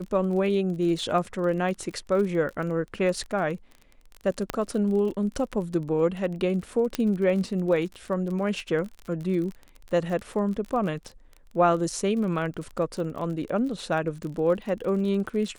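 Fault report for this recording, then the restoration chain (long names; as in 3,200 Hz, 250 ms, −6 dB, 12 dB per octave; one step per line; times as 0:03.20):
surface crackle 34 per second −33 dBFS
0:04.50: click −11 dBFS
0:06.95: click −11 dBFS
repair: click removal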